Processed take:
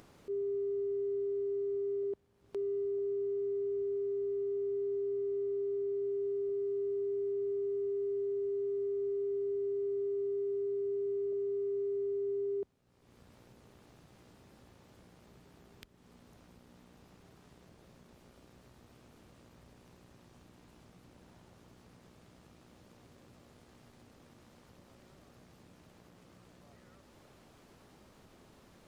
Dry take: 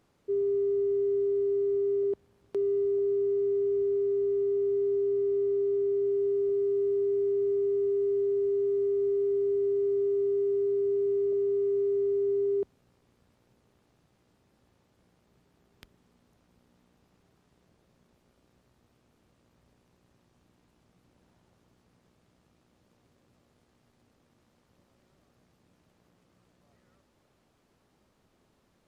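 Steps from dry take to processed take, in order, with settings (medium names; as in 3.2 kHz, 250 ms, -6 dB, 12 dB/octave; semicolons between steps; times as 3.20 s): upward compressor, threshold -37 dBFS; trim -7.5 dB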